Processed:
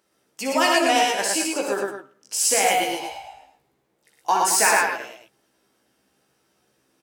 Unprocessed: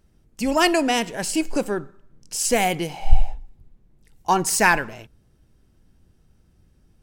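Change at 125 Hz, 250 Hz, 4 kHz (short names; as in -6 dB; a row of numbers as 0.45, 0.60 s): under -15 dB, -4.5 dB, +3.0 dB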